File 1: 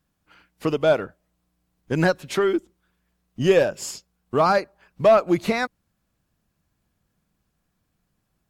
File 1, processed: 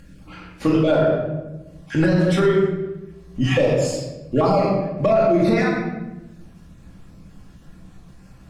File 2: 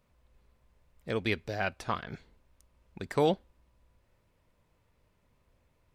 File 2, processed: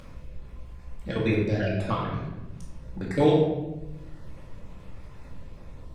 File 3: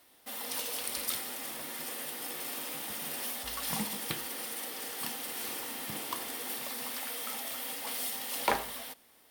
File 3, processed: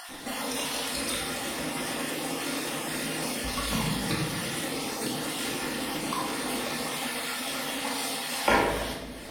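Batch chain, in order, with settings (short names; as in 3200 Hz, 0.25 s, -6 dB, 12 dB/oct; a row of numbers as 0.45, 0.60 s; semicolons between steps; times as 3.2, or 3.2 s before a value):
random spectral dropouts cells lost 24%; LPF 9300 Hz 12 dB/oct; low shelf 420 Hz +7 dB; upward compressor, threshold -34 dBFS; crackle 48/s -58 dBFS; shoebox room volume 490 m³, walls mixed, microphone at 2.3 m; maximiser +6.5 dB; normalise peaks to -9 dBFS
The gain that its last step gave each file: -8.0, -8.0, -4.5 dB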